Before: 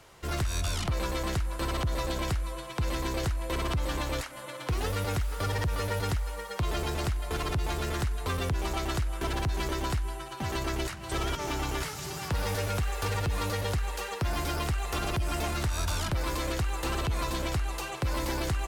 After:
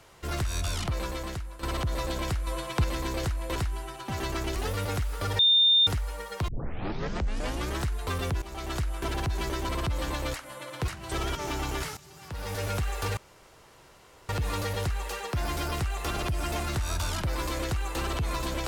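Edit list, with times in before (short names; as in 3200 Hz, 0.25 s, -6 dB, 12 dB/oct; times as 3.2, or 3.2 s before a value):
0.85–1.63 fade out, to -11 dB
2.47–2.84 gain +5 dB
3.56–4.75 swap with 9.88–10.88
5.58–6.06 bleep 3620 Hz -17 dBFS
6.67 tape start 1.37 s
8.61–9.01 fade in, from -14.5 dB
11.97–12.67 fade in quadratic, from -15 dB
13.17 insert room tone 1.12 s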